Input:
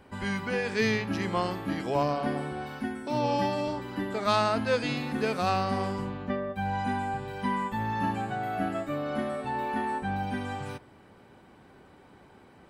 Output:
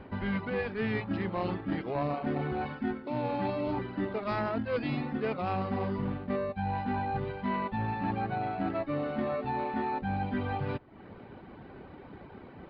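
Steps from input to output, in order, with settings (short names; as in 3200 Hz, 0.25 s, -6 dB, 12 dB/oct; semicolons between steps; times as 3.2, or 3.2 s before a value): self-modulated delay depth 0.15 ms; reverb removal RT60 0.58 s; in parallel at -8.5 dB: sample-and-hold 27×; on the sum: air absorption 280 m; reverse; compressor, threshold -36 dBFS, peak gain reduction 14 dB; reverse; downsampling 11025 Hz; gain +7 dB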